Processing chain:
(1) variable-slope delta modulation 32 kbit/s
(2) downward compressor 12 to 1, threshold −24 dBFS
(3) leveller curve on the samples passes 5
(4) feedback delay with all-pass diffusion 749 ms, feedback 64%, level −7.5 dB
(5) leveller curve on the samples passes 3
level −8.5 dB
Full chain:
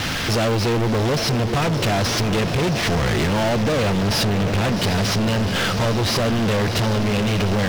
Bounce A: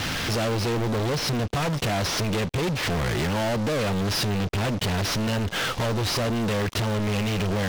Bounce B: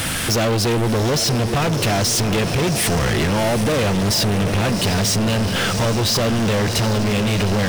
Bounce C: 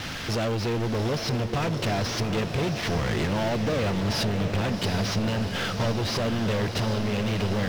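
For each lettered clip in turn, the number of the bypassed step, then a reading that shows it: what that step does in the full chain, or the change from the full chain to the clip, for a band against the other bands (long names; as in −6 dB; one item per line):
4, change in crest factor −2.0 dB
1, 8 kHz band +6.0 dB
5, change in crest factor +6.5 dB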